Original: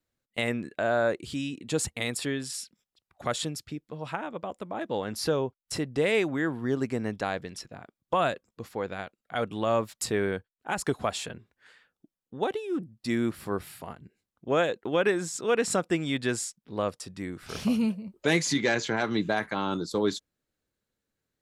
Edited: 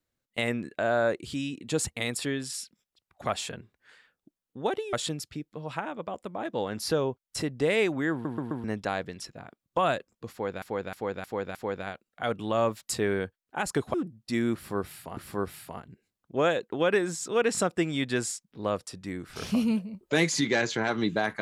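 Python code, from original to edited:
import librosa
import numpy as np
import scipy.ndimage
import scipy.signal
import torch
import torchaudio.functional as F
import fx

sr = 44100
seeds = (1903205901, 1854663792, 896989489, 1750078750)

y = fx.edit(x, sr, fx.stutter_over(start_s=6.48, slice_s=0.13, count=4),
    fx.repeat(start_s=8.67, length_s=0.31, count=5),
    fx.move(start_s=11.06, length_s=1.64, to_s=3.29),
    fx.repeat(start_s=13.3, length_s=0.63, count=2), tone=tone)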